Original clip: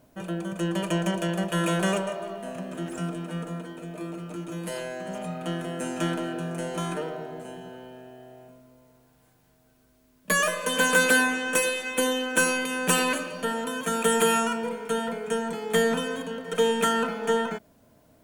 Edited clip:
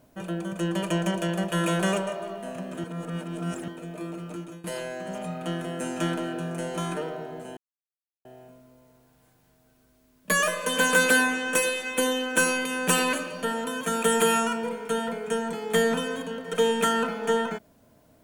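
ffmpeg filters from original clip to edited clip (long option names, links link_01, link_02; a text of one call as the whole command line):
ffmpeg -i in.wav -filter_complex "[0:a]asplit=6[link_01][link_02][link_03][link_04][link_05][link_06];[link_01]atrim=end=2.842[link_07];[link_02]atrim=start=2.838:end=3.682,asetpts=PTS-STARTPTS,areverse[link_08];[link_03]atrim=start=3.678:end=4.64,asetpts=PTS-STARTPTS,afade=type=out:start_time=0.672:duration=0.29:silence=0.133352[link_09];[link_04]atrim=start=4.64:end=7.57,asetpts=PTS-STARTPTS,afade=type=in:duration=0.004:curve=hsin:silence=0.133352,afade=type=out:start_time=2.926:duration=0.004:curve=hsin[link_10];[link_05]atrim=start=7.57:end=8.25,asetpts=PTS-STARTPTS,volume=0[link_11];[link_06]atrim=start=8.25,asetpts=PTS-STARTPTS,afade=type=in:duration=0.004:curve=hsin[link_12];[link_07][link_08]acrossfade=duration=0.004:curve1=hsin:curve2=hsin[link_13];[link_09][link_10][link_11][link_12]concat=n=4:v=0:a=1[link_14];[link_13][link_14]acrossfade=duration=0.004:curve1=hsin:curve2=hsin" out.wav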